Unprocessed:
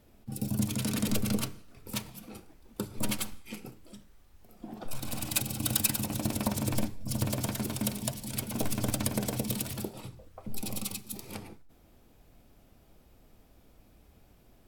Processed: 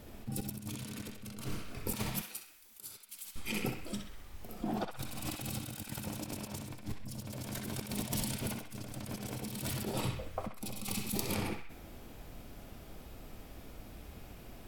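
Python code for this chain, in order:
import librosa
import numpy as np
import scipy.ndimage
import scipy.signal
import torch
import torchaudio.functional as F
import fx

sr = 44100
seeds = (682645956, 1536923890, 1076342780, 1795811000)

p1 = fx.over_compress(x, sr, threshold_db=-42.0, ratio=-1.0)
p2 = fx.pre_emphasis(p1, sr, coefficient=0.97, at=(2.21, 3.36))
p3 = p2 + fx.echo_banded(p2, sr, ms=64, feedback_pct=59, hz=2000.0, wet_db=-3.0, dry=0)
y = F.gain(torch.from_numpy(p3), 2.0).numpy()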